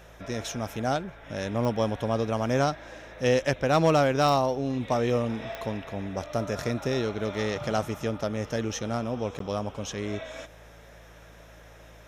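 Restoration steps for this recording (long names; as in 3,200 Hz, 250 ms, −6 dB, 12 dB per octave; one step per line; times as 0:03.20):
clipped peaks rebuilt −13.5 dBFS
click removal
hum removal 55.4 Hz, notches 3
repair the gap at 0:09.39, 13 ms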